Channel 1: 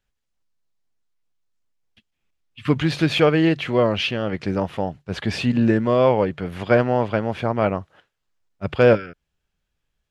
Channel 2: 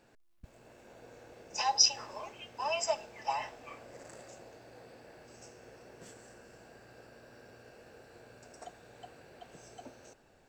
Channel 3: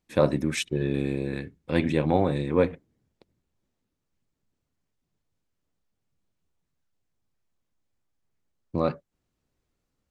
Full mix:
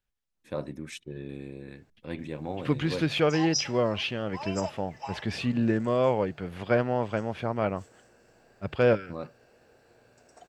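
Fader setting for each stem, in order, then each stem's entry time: -7.5 dB, -5.0 dB, -12.5 dB; 0.00 s, 1.75 s, 0.35 s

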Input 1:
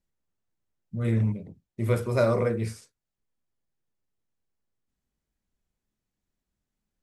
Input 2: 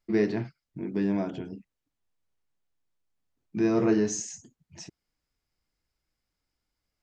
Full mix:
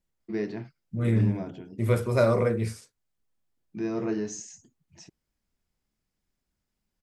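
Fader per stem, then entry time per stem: +1.0 dB, -6.0 dB; 0.00 s, 0.20 s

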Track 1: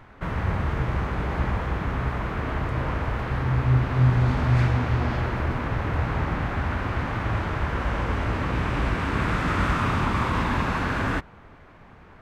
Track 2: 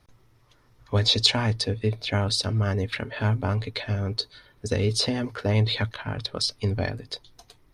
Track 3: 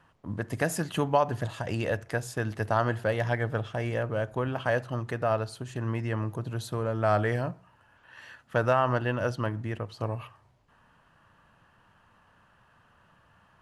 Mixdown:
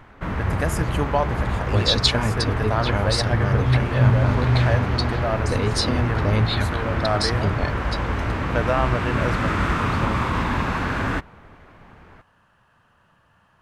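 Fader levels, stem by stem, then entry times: +1.5 dB, +0.5 dB, +1.5 dB; 0.00 s, 0.80 s, 0.00 s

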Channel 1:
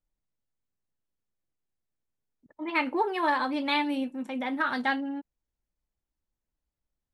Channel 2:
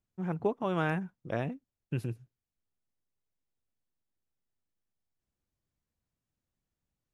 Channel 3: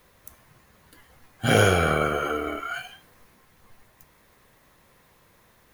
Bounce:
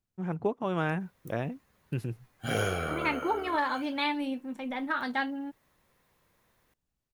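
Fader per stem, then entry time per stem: -3.0 dB, +0.5 dB, -11.0 dB; 0.30 s, 0.00 s, 1.00 s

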